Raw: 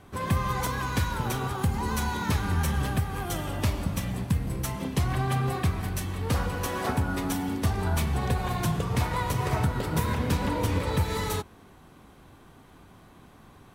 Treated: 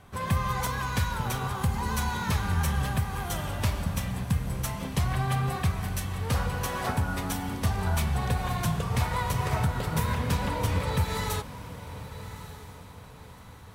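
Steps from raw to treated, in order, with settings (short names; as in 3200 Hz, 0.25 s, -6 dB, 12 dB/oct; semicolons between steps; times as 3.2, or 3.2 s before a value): bell 320 Hz -9 dB 0.71 oct; on a send: diffused feedback echo 1.191 s, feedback 43%, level -13.5 dB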